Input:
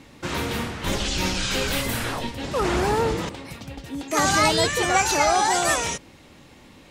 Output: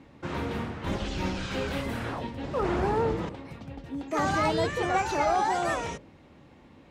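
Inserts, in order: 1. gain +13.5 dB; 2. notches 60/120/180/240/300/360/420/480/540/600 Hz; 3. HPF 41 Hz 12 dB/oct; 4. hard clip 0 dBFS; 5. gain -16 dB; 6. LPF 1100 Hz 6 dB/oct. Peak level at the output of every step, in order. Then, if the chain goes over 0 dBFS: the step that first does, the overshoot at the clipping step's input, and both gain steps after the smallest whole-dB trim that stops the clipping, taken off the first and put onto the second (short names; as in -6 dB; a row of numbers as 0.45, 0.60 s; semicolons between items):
+7.0, +6.5, +6.5, 0.0, -16.0, -16.5 dBFS; step 1, 6.5 dB; step 1 +6.5 dB, step 5 -9 dB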